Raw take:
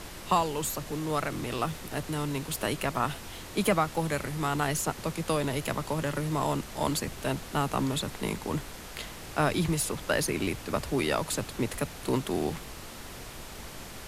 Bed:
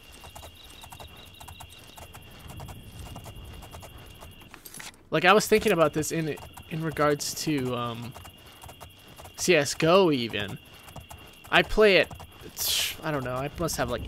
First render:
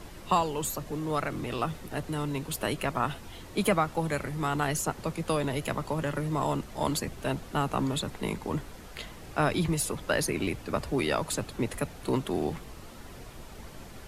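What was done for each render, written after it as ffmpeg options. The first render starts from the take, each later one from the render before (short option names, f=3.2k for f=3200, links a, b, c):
-af "afftdn=nr=8:nf=-43"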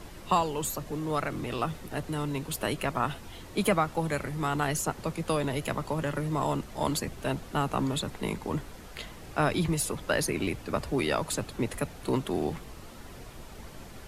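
-af anull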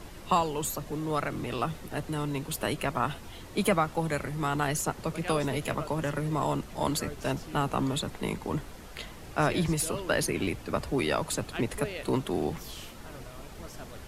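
-filter_complex "[1:a]volume=-19dB[a];[0:a][a]amix=inputs=2:normalize=0"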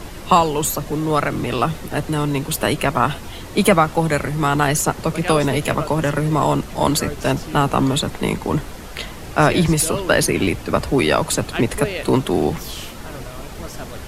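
-af "volume=11.5dB"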